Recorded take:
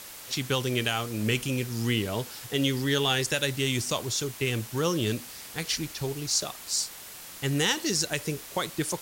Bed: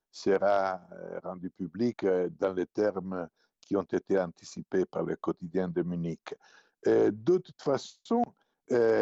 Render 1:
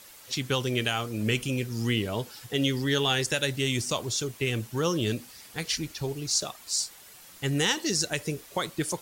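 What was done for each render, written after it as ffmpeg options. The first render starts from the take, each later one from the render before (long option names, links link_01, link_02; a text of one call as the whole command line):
ffmpeg -i in.wav -af "afftdn=noise_reduction=8:noise_floor=-44" out.wav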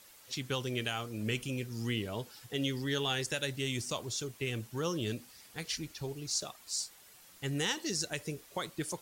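ffmpeg -i in.wav -af "volume=-7.5dB" out.wav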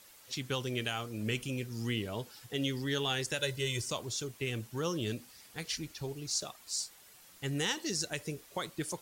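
ffmpeg -i in.wav -filter_complex "[0:a]asettb=1/sr,asplit=3[link_01][link_02][link_03];[link_01]atrim=end=3.394[link_04];[link_02]atrim=start=3.39:end=3.91,asetpts=PTS-STARTPTS,afade=type=in:duration=0.004:curve=qsin,afade=type=out:start_time=0.516:duration=0.004:curve=qsin,aecho=1:1:2:0.65,atrim=end_sample=22932[link_05];[link_03]atrim=start=3.906[link_06];[link_04][link_05]acrossfade=duration=0.004:curve1=hsin:curve2=qsin[link_07];[link_07][link_06]acrossfade=duration=0.004:curve1=qsin:curve2=hsin" out.wav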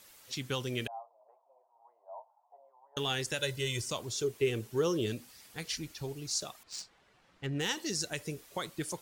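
ffmpeg -i in.wav -filter_complex "[0:a]asettb=1/sr,asplit=3[link_01][link_02][link_03];[link_01]atrim=end=0.874[link_04];[link_02]atrim=start=0.87:end=2.97,asetpts=PTS-STARTPTS,afade=type=in:duration=0.004:curve=qsin,afade=type=out:start_time=2.096:duration=0.004:curve=qsin,asuperpass=centerf=790:order=8:qfactor=2.1[link_05];[link_03]atrim=start=2.966[link_06];[link_04][link_05]acrossfade=duration=0.004:curve1=hsin:curve2=qsin[link_07];[link_07][link_06]acrossfade=duration=0.004:curve1=qsin:curve2=hsin,asettb=1/sr,asplit=3[link_08][link_09][link_10];[link_08]atrim=end=4.164[link_11];[link_09]atrim=start=4.16:end=5.06,asetpts=PTS-STARTPTS,afade=type=in:duration=0.004:curve=qsin,afade=type=out:start_time=0.896:duration=0.004:curve=qsin,equalizer=frequency=410:width=3.2:gain=11.5[link_12];[link_10]atrim=start=5.056[link_13];[link_11][link_12]acrossfade=duration=0.004:curve1=hsin:curve2=qsin[link_14];[link_14][link_13]acrossfade=duration=0.004:curve1=qsin:curve2=hsin,asettb=1/sr,asplit=3[link_15][link_16][link_17];[link_15]atrim=end=6.634[link_18];[link_16]atrim=start=6.63:end=7.69,asetpts=PTS-STARTPTS,afade=type=in:duration=0.004:curve=qsin,afade=type=out:start_time=1.056:duration=0.004:curve=qsin,adynamicsmooth=sensitivity=5.5:basefreq=2500[link_19];[link_17]atrim=start=7.686[link_20];[link_18][link_19]acrossfade=duration=0.004:curve1=hsin:curve2=qsin[link_21];[link_21][link_20]acrossfade=duration=0.004:curve1=qsin:curve2=hsin" out.wav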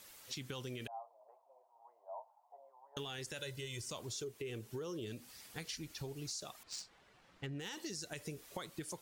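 ffmpeg -i in.wav -af "alimiter=level_in=1dB:limit=-24dB:level=0:latency=1:release=21,volume=-1dB,acompressor=threshold=-41dB:ratio=6" out.wav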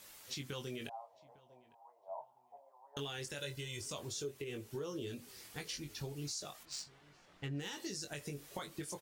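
ffmpeg -i in.wav -filter_complex "[0:a]asplit=2[link_01][link_02];[link_02]adelay=21,volume=-5.5dB[link_03];[link_01][link_03]amix=inputs=2:normalize=0,asplit=2[link_04][link_05];[link_05]adelay=854,lowpass=frequency=2300:poles=1,volume=-23dB,asplit=2[link_06][link_07];[link_07]adelay=854,lowpass=frequency=2300:poles=1,volume=0.18[link_08];[link_04][link_06][link_08]amix=inputs=3:normalize=0" out.wav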